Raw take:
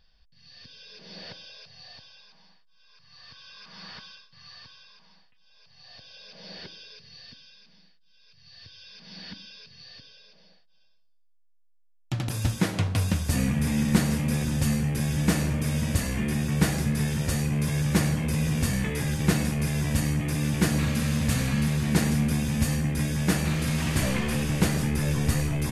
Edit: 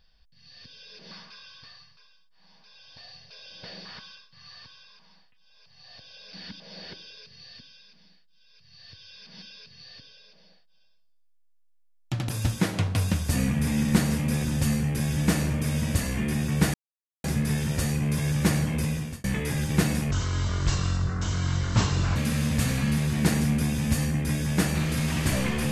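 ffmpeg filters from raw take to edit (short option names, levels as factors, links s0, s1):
-filter_complex "[0:a]asplit=10[s0][s1][s2][s3][s4][s5][s6][s7][s8][s9];[s0]atrim=end=1.112[s10];[s1]atrim=start=1.108:end=3.852,asetpts=PTS-STARTPTS,areverse[s11];[s2]atrim=start=3.848:end=6.332[s12];[s3]atrim=start=9.148:end=9.422[s13];[s4]atrim=start=6.328:end=9.152[s14];[s5]atrim=start=9.418:end=16.74,asetpts=PTS-STARTPTS,afade=t=out:st=7.318:d=0.004:c=hsin,apad=pad_dur=0.5[s15];[s6]atrim=start=16.74:end=18.74,asetpts=PTS-STARTPTS,afade=t=in:d=0.004:c=hsin,afade=t=out:st=1.57:d=0.43[s16];[s7]atrim=start=18.74:end=19.614,asetpts=PTS-STARTPTS,afade=t=in:d=0.004:c=hsin[s17];[s8]atrim=start=19.61:end=20.86,asetpts=PTS-STARTPTS,asetrate=26901,aresample=44100[s18];[s9]atrim=start=20.856[s19];[s10][s11]acrossfade=d=0.004:c1=hsin:c2=hsin[s20];[s20][s12]acrossfade=d=0.004:c1=hsin:c2=hsin[s21];[s21][s13]acrossfade=d=0.004:c1=hsin:c2=hsin[s22];[s22][s14]acrossfade=d=0.004:c1=hsin:c2=hsin[s23];[s15][s16][s17]concat=n=3:v=0:a=1[s24];[s23][s24]acrossfade=d=0.004:c1=hsin:c2=hsin[s25];[s25][s18]acrossfade=d=0.004:c1=hsin:c2=hsin[s26];[s26][s19]acrossfade=d=0.004:c1=hsin:c2=hsin"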